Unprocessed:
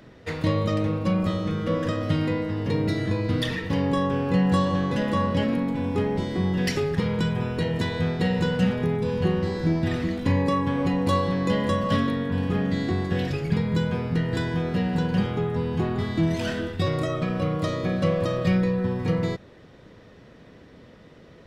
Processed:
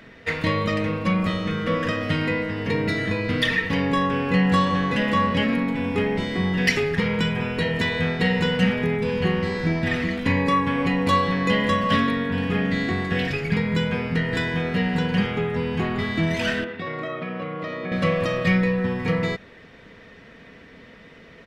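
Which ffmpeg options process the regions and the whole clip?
-filter_complex "[0:a]asettb=1/sr,asplit=3[s0][s1][s2];[s0]atrim=end=16.644[s3];[s1]atrim=start=16.64:end=17.92,asetpts=PTS-STARTPTS,afade=t=in:d=0.004:c=qsin,afade=t=out:st=1.276:d=0.004:c=qsin,acompressor=threshold=0.0398:ratio=2:attack=3.2:release=140:knee=1:detection=peak,highpass=190,lowpass=4600,highshelf=f=3400:g=-11[s4];[s2]atrim=start=17.916[s5];[s3][s4]acrossfade=d=0.004:c1=hsin:c2=qsin[s6];[s6][s5]acrossfade=d=0.004:c1=qsin:c2=hsin,equalizer=f=2100:w=1:g=10.5,aecho=1:1:4.4:0.33"

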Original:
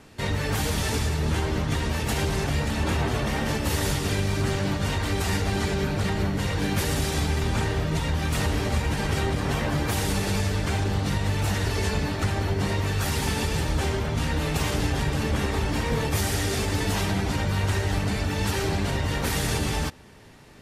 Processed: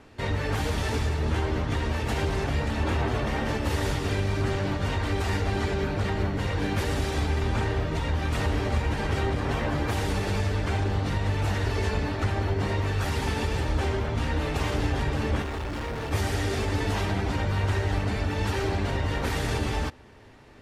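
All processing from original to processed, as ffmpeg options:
-filter_complex "[0:a]asettb=1/sr,asplit=3[s0][s1][s2];[s0]atrim=end=15.424[s3];[s1]atrim=start=15.42:end=16.11,asetpts=PTS-STARTPTS,afade=t=in:d=0.004:c=qsin,afade=t=out:st=0.686:d=0.004:c=qsin,acrusher=bits=8:dc=4:mix=0:aa=0.000001,asoftclip=type=hard:threshold=0.0376,aeval=exprs='val(0)+0.00355*sin(2*PI*1400*n/s)':c=same[s4];[s2]atrim=start=16.106[s5];[s3][s4]acrossfade=d=0.004:c1=hsin:c2=qsin[s6];[s6][s5]acrossfade=d=0.004:c1=qsin:c2=hsin,lowpass=f=2600:p=1,equalizer=f=170:w=3.9:g=-10.5"

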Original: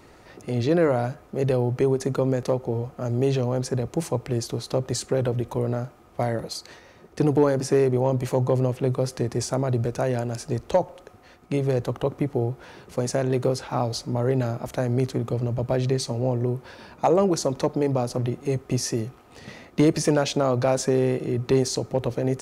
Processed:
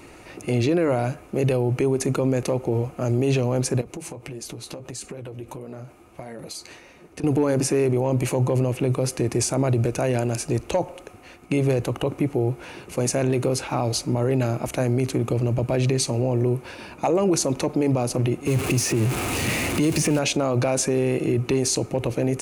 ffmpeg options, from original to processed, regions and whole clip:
-filter_complex "[0:a]asettb=1/sr,asplit=3[s0][s1][s2];[s0]atrim=end=3.814[s3];[s1]atrim=start=3.81:end=7.24,asetpts=PTS-STARTPTS,afade=t=in:d=0.004:c=qsin,afade=t=out:st=3.426:d=0.004:c=qsin,flanger=delay=4.2:depth=7.4:regen=-37:speed=1.6:shape=sinusoidal,acompressor=threshold=0.0158:ratio=12:attack=3.2:release=140:knee=1:detection=peak[s4];[s2]atrim=start=7.236[s5];[s3][s4]acrossfade=d=0.004:c1=hsin:c2=qsin[s6];[s6][s5]acrossfade=d=0.004:c1=qsin:c2=hsin,asettb=1/sr,asplit=3[s7][s8][s9];[s7]atrim=end=18.474[s10];[s8]atrim=start=18.47:end=20.19,asetpts=PTS-STARTPTS,afade=t=in:d=0.004:c=qsin,afade=t=out:st=1.716:d=0.004:c=qsin,aeval=exprs='val(0)+0.5*0.0422*sgn(val(0))':c=same,acrossover=split=110|3200[s11][s12][s13];[s11]acompressor=threshold=0.00708:ratio=4[s14];[s12]acompressor=threshold=0.0794:ratio=4[s15];[s13]acompressor=threshold=0.0251:ratio=4[s16];[s14][s15][s16]amix=inputs=3:normalize=0,equalizer=f=93:t=o:w=1.5:g=8.5[s17];[s9]atrim=start=20.186[s18];[s10][s17]acrossfade=d=0.004:c1=hsin:c2=qsin[s19];[s19][s18]acrossfade=d=0.004:c1=qsin:c2=hsin,superequalizer=6b=1.58:12b=2.24:15b=1.58:16b=2.24,alimiter=limit=0.15:level=0:latency=1:release=25,volume=1.58"

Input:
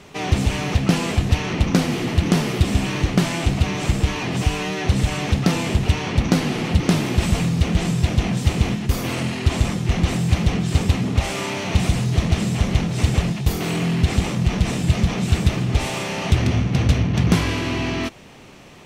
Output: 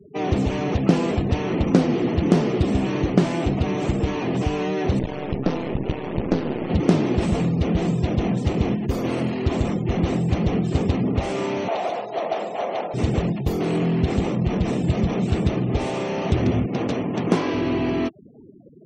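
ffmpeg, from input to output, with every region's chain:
-filter_complex "[0:a]asettb=1/sr,asplit=3[s0][s1][s2];[s0]atrim=end=4.994[s3];[s1]atrim=start=4.99:end=6.7,asetpts=PTS-STARTPTS,afade=t=in:d=0.004:c=qsin,afade=t=out:st=1.706:d=0.004:c=qsin,adynamicsmooth=sensitivity=4:basefreq=6200,aeval=exprs='max(val(0),0)':c=same[s4];[s2]atrim=start=6.696[s5];[s3][s4]acrossfade=d=0.004:c1=hsin:c2=qsin[s6];[s6][s5]acrossfade=d=0.004:c1=qsin:c2=hsin,asettb=1/sr,asplit=3[s7][s8][s9];[s7]atrim=end=11.684[s10];[s8]atrim=start=11.68:end=12.94,asetpts=PTS-STARTPTS,afade=t=in:d=0.004:c=qsin,afade=t=out:st=1.256:d=0.004:c=qsin,highpass=f=660:t=q:w=2.9,highshelf=f=8600:g=-11[s11];[s9]atrim=start=12.936[s12];[s10][s11]acrossfade=d=0.004:c1=hsin:c2=qsin[s13];[s13][s12]acrossfade=d=0.004:c1=qsin:c2=hsin,asettb=1/sr,asplit=3[s14][s15][s16];[s14]atrim=end=16.664[s17];[s15]atrim=start=16.66:end=17.54,asetpts=PTS-STARTPTS,afade=t=in:d=0.004:c=qsin,afade=t=out:st=0.876:d=0.004:c=qsin,highpass=220,adynamicequalizer=threshold=0.0112:dfrequency=970:dqfactor=1.8:tfrequency=970:tqfactor=1.8:attack=5:release=100:ratio=0.375:range=1.5:mode=boostabove:tftype=bell[s18];[s16]atrim=start=17.536[s19];[s17][s18]acrossfade=d=0.004:c1=hsin:c2=qsin[s20];[s20][s19]acrossfade=d=0.004:c1=qsin:c2=hsin,afftfilt=real='re*gte(hypot(re,im),0.0224)':imag='im*gte(hypot(re,im),0.0224)':win_size=1024:overlap=0.75,equalizer=f=390:t=o:w=2.7:g=13.5,volume=0.376"

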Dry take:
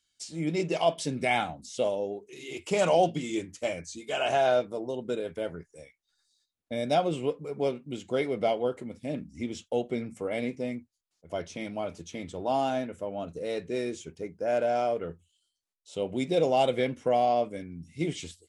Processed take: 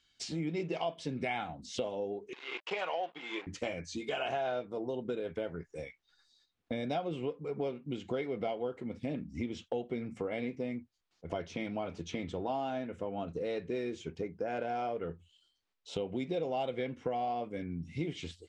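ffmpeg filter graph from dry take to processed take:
-filter_complex "[0:a]asettb=1/sr,asplit=3[s0][s1][s2];[s0]atrim=end=2.334[s3];[s1]atrim=start=2.33:end=3.47,asetpts=PTS-STARTPTS,afade=t=in:d=0.004:c=qsin,afade=t=out:st=1.136:d=0.004:c=qsin,aeval=exprs='sgn(val(0))*max(abs(val(0))-0.00631,0)':c=same,highpass=690,lowpass=3900[s4];[s2]atrim=start=3.466[s5];[s3][s4]acrossfade=d=0.004:c1=hsin:c2=qsin[s6];[s6][s5]acrossfade=d=0.004:c1=qsin:c2=hsin,lowpass=3800,bandreject=f=600:w=12,acompressor=threshold=0.00631:ratio=4,volume=2.66"

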